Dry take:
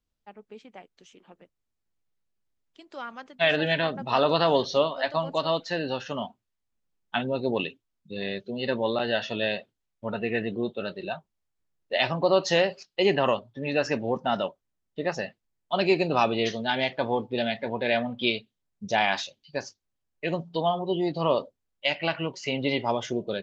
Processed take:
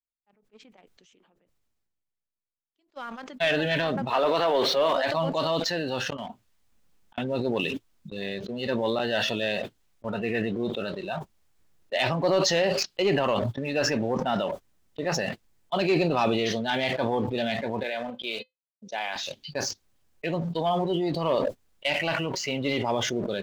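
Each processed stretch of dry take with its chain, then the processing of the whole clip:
4.10–4.93 s: jump at every zero crossing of -33 dBFS + three-band isolator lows -15 dB, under 280 Hz, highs -18 dB, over 3.9 kHz
6.04–7.18 s: peaking EQ 360 Hz -4 dB 0.22 oct + slow attack 282 ms
17.83–19.16 s: expander -39 dBFS + high-pass 350 Hz + feedback comb 510 Hz, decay 0.17 s
whole clip: gate -41 dBFS, range -18 dB; waveshaping leveller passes 1; decay stretcher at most 23 dB/s; trim -5 dB

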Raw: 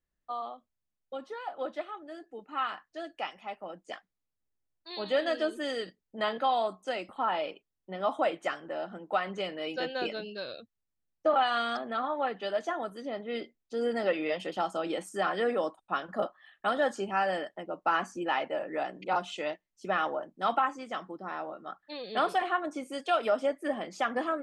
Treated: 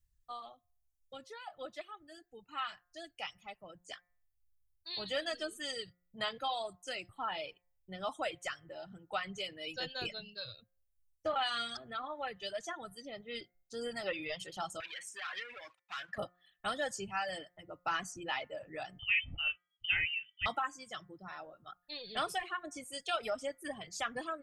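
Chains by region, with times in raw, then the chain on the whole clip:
14.80–16.18 s: compression 10:1, threshold -30 dBFS + waveshaping leveller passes 3 + band-pass filter 2 kHz, Q 1.7
18.99–20.46 s: distance through air 190 m + doubling 20 ms -11 dB + frequency inversion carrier 3.3 kHz
whole clip: de-hum 177.5 Hz, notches 13; reverb removal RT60 1.9 s; FFT filter 120 Hz 0 dB, 230 Hz -23 dB, 930 Hz -22 dB, 7.5 kHz -6 dB; trim +13 dB

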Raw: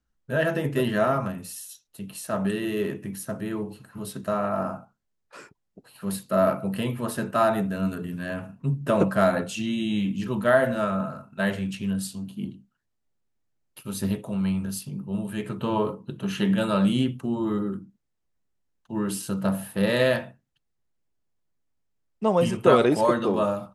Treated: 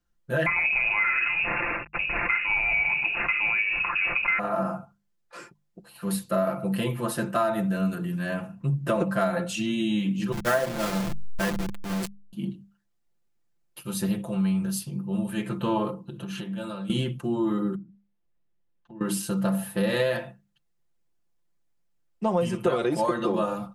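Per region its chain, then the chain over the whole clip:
0.46–4.39 s: CVSD coder 32 kbps + frequency inversion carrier 2.7 kHz + level flattener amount 70%
10.32–12.33 s: send-on-delta sampling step -22.5 dBFS + three bands expanded up and down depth 70%
15.90–16.90 s: peaking EQ 1.9 kHz -6 dB 0.22 oct + compression 8:1, threshold -33 dBFS
17.75–19.01 s: low-pass 3 kHz + peaking EQ 1.3 kHz -3.5 dB 1.5 oct + compression 4:1, threshold -46 dBFS
whole clip: hum notches 50/100/150/200 Hz; comb 5.8 ms, depth 72%; compression 6:1, threshold -21 dBFS

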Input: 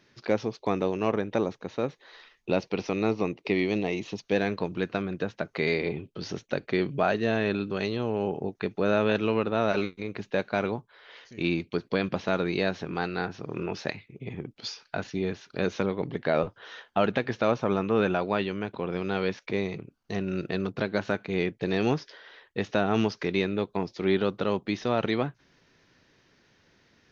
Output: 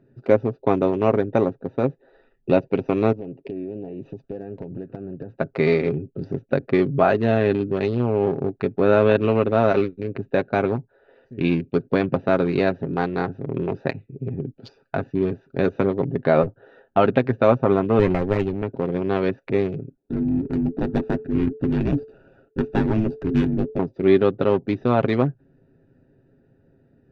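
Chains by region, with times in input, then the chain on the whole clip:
3.12–5.38 s: compression 4:1, threshold -36 dBFS + loudspeaker Doppler distortion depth 0.18 ms
17.99–18.63 s: comb filter that takes the minimum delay 0.45 ms + band-stop 1.5 kHz, Q 9.3
19.97–23.79 s: comb filter that takes the minimum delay 0.97 ms + frequency shift -440 Hz
whole clip: local Wiener filter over 41 samples; low-pass 1.4 kHz 6 dB/octave; comb 7.5 ms, depth 43%; trim +8.5 dB

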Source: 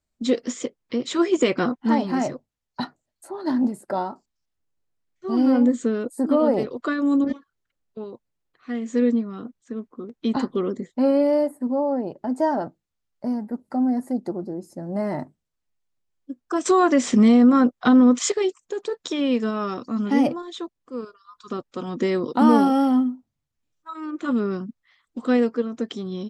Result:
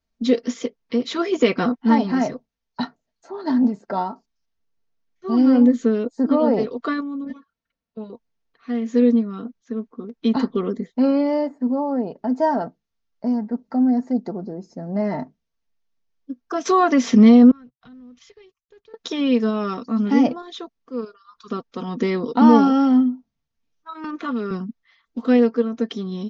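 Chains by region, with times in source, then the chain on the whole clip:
7.00–8.10 s: treble shelf 7.4 kHz -8.5 dB + comb of notches 400 Hz + compression 5:1, threshold -30 dBFS
17.51–18.94 s: companding laws mixed up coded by A + FFT filter 130 Hz 0 dB, 210 Hz -21 dB, 600 Hz -26 dB, 2.8 kHz -17 dB, 7.8 kHz -25 dB + compression 4:1, threshold -47 dBFS
24.04–24.51 s: median filter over 5 samples + bass shelf 400 Hz -10 dB + three bands compressed up and down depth 100%
whole clip: steep low-pass 6.5 kHz 72 dB/octave; comb 4.4 ms, depth 48%; trim +1 dB

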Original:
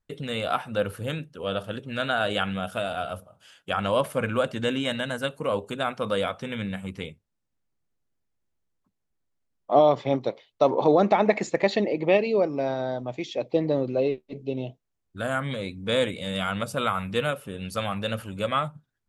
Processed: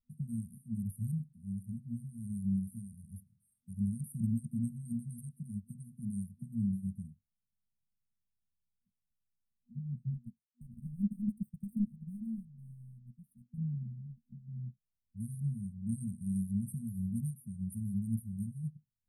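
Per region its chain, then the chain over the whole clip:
10.14–13.58 s: peaking EQ 880 Hz +5.5 dB 2.2 oct + compression 4:1, threshold -16 dBFS + power-law waveshaper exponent 1.4
whole clip: FFT band-reject 240–8400 Hz; dynamic bell 320 Hz, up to +5 dB, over -52 dBFS, Q 3; upward expansion 1.5:1, over -45 dBFS; trim +1 dB

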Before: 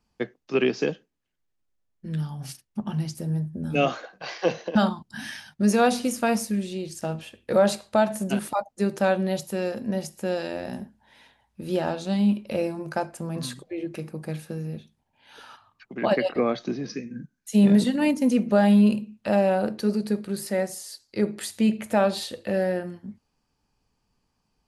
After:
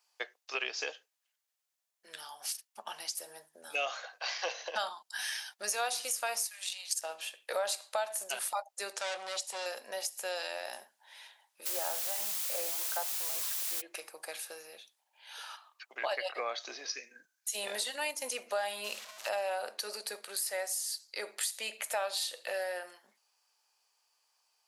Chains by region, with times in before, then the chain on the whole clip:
6.45–7.00 s: inverse Chebyshev high-pass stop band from 390 Hz + transient shaper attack +12 dB, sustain -2 dB
8.93–9.66 s: band-stop 6.2 kHz, Q 24 + hard clipper -27.5 dBFS + low-pass 8.8 kHz 24 dB/octave
11.65–13.80 s: low-pass 1.7 kHz + added noise white -38 dBFS
18.84–19.29 s: one-bit delta coder 64 kbps, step -38 dBFS + peaking EQ 9.7 kHz -7.5 dB 0.58 oct
whole clip: high-pass 620 Hz 24 dB/octave; treble shelf 3.1 kHz +11 dB; compression 2.5:1, threshold -32 dBFS; trim -2 dB

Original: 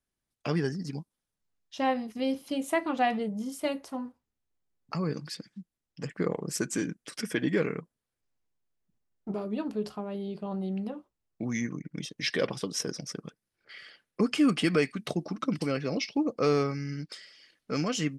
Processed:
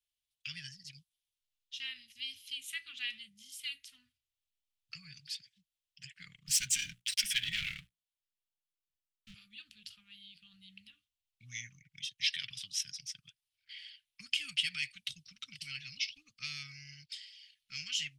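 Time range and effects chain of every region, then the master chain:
6.46–9.34 s: hum notches 60/120/180/240/300/360/420/480 Hz + waveshaping leveller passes 3
whole clip: elliptic band-stop 110–3100 Hz, stop band 60 dB; three-band isolator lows -23 dB, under 480 Hz, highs -14 dB, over 2.8 kHz; trim +11 dB

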